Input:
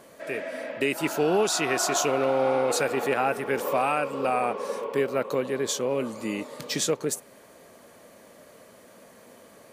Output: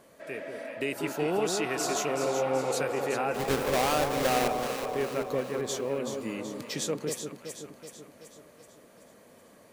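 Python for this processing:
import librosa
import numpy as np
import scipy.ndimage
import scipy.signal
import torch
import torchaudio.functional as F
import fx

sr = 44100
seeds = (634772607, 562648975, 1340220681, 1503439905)

y = fx.halfwave_hold(x, sr, at=(3.34, 4.48))
y = fx.low_shelf(y, sr, hz=120.0, db=5.5)
y = fx.echo_alternate(y, sr, ms=189, hz=1000.0, feedback_pct=73, wet_db=-4.5)
y = y * librosa.db_to_amplitude(-6.5)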